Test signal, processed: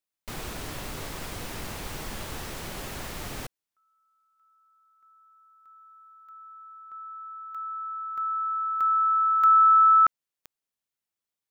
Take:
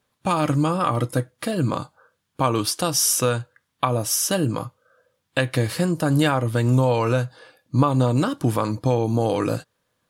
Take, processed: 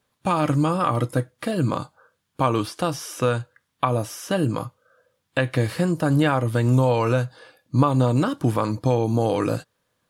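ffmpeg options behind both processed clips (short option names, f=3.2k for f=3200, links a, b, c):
-filter_complex "[0:a]acrossover=split=3000[a][b];[b]acompressor=threshold=-38dB:ratio=4:attack=1:release=60[c];[a][c]amix=inputs=2:normalize=0"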